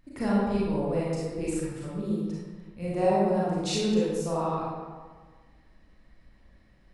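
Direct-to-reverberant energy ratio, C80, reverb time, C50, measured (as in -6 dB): -8.0 dB, 0.0 dB, 1.5 s, -3.5 dB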